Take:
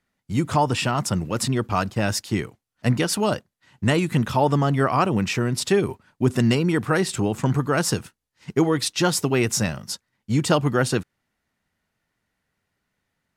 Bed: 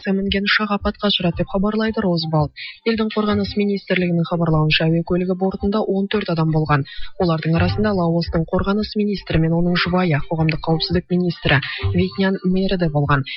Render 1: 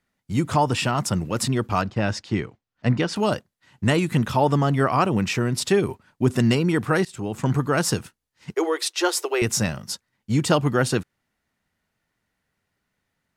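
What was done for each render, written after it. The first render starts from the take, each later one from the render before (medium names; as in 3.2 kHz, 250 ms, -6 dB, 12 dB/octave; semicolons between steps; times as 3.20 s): 1.81–3.16 s: distance through air 120 m; 7.05–7.52 s: fade in, from -18.5 dB; 8.54–9.42 s: Chebyshev high-pass 340 Hz, order 6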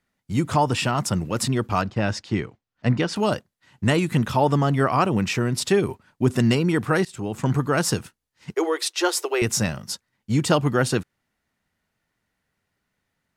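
no audible change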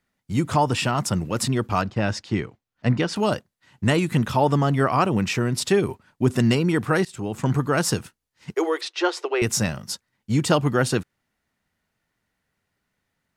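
8.81–9.42 s: low-pass 3.8 kHz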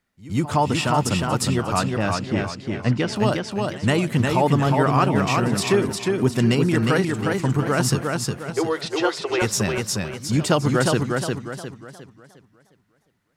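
pre-echo 118 ms -19 dB; modulated delay 357 ms, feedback 38%, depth 68 cents, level -3.5 dB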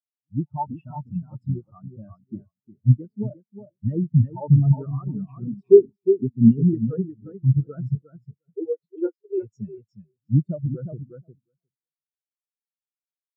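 loudness maximiser +9.5 dB; spectral contrast expander 4:1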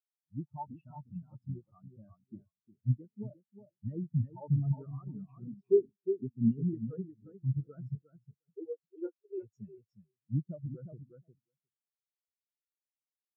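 trim -13.5 dB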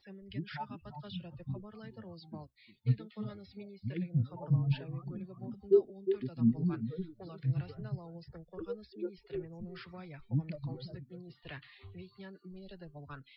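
add bed -31 dB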